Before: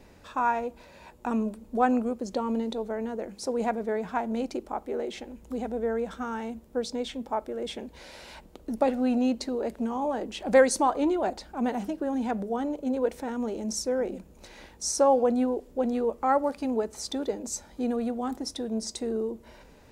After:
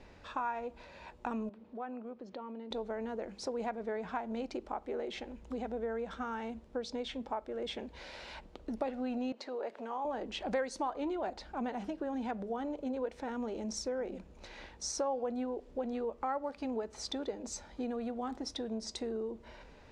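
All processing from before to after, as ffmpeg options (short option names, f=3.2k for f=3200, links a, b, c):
-filter_complex "[0:a]asettb=1/sr,asplit=3[a][b][c];[a]atrim=end=1.494[d];[b]atrim=start=1.49:end=2.71,asetpts=PTS-STARTPTS,afade=t=in:d=0.004:c=qsin,afade=t=out:st=1.216:d=0.004:c=qsin,highpass=150,lowpass=3.5k,acompressor=threshold=-47dB:ratio=2:attack=3.2:release=140:knee=1:detection=peak[e];[c]atrim=start=2.706[f];[d][e]acrossfade=d=0.004:c1=hsin:c2=qsin[g];[g][f]acrossfade=d=0.004:c1=qsin:c2=hsin,asettb=1/sr,asplit=3[h][i][j];[h]atrim=end=9.324[k];[i]atrim=start=9.32:end=10.05,asetpts=PTS-STARTPTS,afade=t=in:d=0.004:c=qsin,afade=t=out:st=0.726:d=0.004:c=qsin,highpass=500,highshelf=f=4.1k:g=-9,acompressor=mode=upward:threshold=-37dB:ratio=2.5:attack=3.2:release=140:knee=2.83:detection=peak[l];[j]atrim=start=10.046[m];[k][l]acrossfade=d=0.004:c1=hsin:c2=qsin[n];[n][m]acrossfade=d=0.004:c1=qsin:c2=hsin,lowpass=4.6k,equalizer=f=210:w=0.45:g=-4.5,acompressor=threshold=-35dB:ratio=3"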